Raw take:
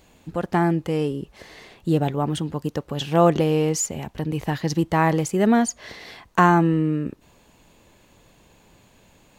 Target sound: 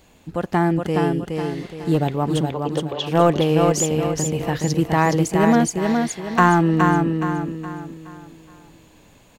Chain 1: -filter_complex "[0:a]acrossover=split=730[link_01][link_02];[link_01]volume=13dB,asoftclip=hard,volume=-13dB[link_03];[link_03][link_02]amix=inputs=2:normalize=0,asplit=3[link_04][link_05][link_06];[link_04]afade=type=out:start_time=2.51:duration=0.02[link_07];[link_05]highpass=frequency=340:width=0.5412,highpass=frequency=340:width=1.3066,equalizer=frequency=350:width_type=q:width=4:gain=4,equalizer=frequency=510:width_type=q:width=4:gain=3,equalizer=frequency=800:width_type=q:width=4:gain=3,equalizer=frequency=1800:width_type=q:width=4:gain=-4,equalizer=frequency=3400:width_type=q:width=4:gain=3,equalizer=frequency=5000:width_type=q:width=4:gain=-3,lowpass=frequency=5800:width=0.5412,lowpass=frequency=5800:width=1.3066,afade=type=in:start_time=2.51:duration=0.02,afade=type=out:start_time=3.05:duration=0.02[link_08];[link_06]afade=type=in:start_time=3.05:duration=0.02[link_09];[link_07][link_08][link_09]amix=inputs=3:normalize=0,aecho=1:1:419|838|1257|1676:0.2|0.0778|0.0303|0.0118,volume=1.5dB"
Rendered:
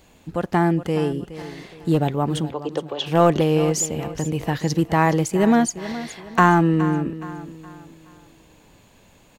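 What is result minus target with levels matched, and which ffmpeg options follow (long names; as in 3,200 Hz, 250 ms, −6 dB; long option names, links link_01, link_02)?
echo-to-direct −10 dB
-filter_complex "[0:a]acrossover=split=730[link_01][link_02];[link_01]volume=13dB,asoftclip=hard,volume=-13dB[link_03];[link_03][link_02]amix=inputs=2:normalize=0,asplit=3[link_04][link_05][link_06];[link_04]afade=type=out:start_time=2.51:duration=0.02[link_07];[link_05]highpass=frequency=340:width=0.5412,highpass=frequency=340:width=1.3066,equalizer=frequency=350:width_type=q:width=4:gain=4,equalizer=frequency=510:width_type=q:width=4:gain=3,equalizer=frequency=800:width_type=q:width=4:gain=3,equalizer=frequency=1800:width_type=q:width=4:gain=-4,equalizer=frequency=3400:width_type=q:width=4:gain=3,equalizer=frequency=5000:width_type=q:width=4:gain=-3,lowpass=frequency=5800:width=0.5412,lowpass=frequency=5800:width=1.3066,afade=type=in:start_time=2.51:duration=0.02,afade=type=out:start_time=3.05:duration=0.02[link_08];[link_06]afade=type=in:start_time=3.05:duration=0.02[link_09];[link_07][link_08][link_09]amix=inputs=3:normalize=0,aecho=1:1:419|838|1257|1676|2095:0.631|0.246|0.096|0.0374|0.0146,volume=1.5dB"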